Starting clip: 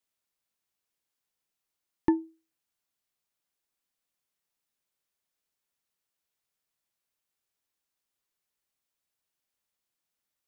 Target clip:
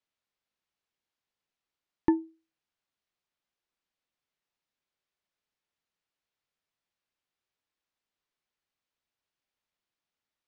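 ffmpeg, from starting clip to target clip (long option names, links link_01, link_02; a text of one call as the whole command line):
ffmpeg -i in.wav -af "lowpass=4500" out.wav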